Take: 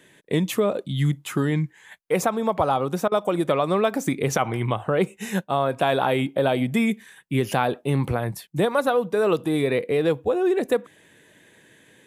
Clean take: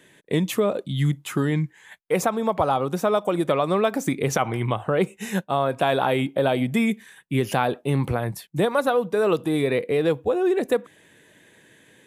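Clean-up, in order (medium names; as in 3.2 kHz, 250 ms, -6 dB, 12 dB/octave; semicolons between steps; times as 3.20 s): interpolate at 3.08 s, 36 ms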